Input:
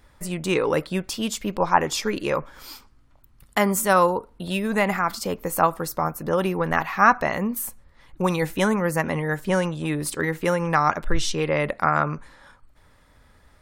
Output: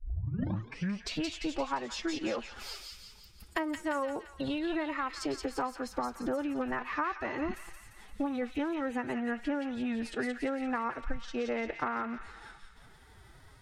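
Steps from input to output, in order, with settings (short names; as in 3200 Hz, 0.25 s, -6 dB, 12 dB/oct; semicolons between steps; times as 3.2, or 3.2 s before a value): tape start at the beginning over 1.32 s; compressor 8:1, threshold -29 dBFS, peak gain reduction 18.5 dB; formant-preserving pitch shift +7.5 st; treble ducked by the level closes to 2000 Hz, closed at -28 dBFS; on a send: thin delay 0.173 s, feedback 54%, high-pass 2300 Hz, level -3 dB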